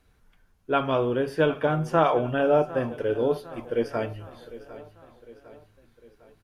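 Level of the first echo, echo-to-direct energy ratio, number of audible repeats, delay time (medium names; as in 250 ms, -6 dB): -17.0 dB, -15.5 dB, 4, 754 ms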